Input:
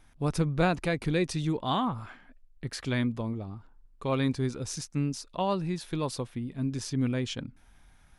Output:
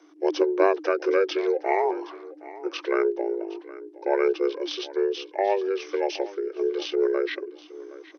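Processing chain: pitch shift -11 st; feedback delay 767 ms, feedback 20%, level -18 dB; frequency shift +290 Hz; trim +5 dB

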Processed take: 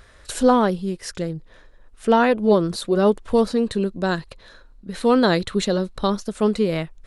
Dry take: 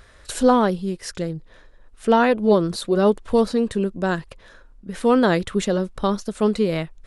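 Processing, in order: 3.66–6.10 s: peaking EQ 4.1 kHz +11 dB 0.2 oct

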